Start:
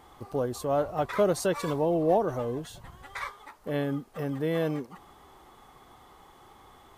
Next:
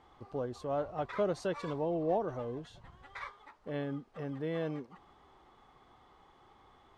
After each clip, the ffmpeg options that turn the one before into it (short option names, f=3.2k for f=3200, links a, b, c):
-af "lowpass=4.6k,volume=-7.5dB"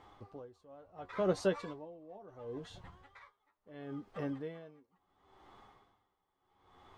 -af "flanger=delay=9.8:depth=1.2:regen=41:speed=0.52:shape=sinusoidal,aeval=exprs='val(0)*pow(10,-25*(0.5-0.5*cos(2*PI*0.72*n/s))/20)':c=same,volume=7dB"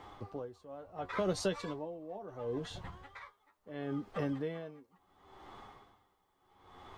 -filter_complex "[0:a]acrossover=split=120|3000[a][b][c];[b]acompressor=threshold=-40dB:ratio=3[d];[a][d][c]amix=inputs=3:normalize=0,volume=7dB"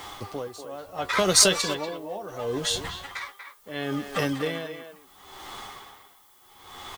-filter_complex "[0:a]asplit=2[a][b];[b]adelay=240,highpass=300,lowpass=3.4k,asoftclip=type=hard:threshold=-29.5dB,volume=-8dB[c];[a][c]amix=inputs=2:normalize=0,crystalizer=i=9.5:c=0,aeval=exprs='0.266*(cos(1*acos(clip(val(0)/0.266,-1,1)))-cos(1*PI/2))+0.00596*(cos(7*acos(clip(val(0)/0.266,-1,1)))-cos(7*PI/2))':c=same,volume=8dB"